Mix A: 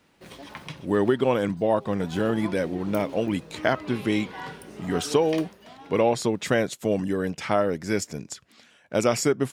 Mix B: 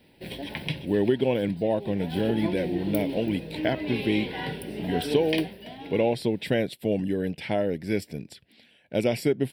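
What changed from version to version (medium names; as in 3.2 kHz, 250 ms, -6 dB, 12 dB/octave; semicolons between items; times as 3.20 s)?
background +9.0 dB; master: add static phaser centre 2.9 kHz, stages 4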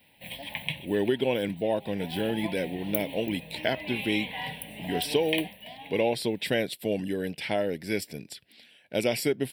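background: add static phaser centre 1.4 kHz, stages 6; master: add tilt EQ +2 dB/octave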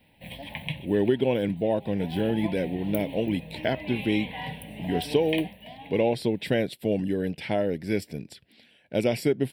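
master: add tilt EQ -2 dB/octave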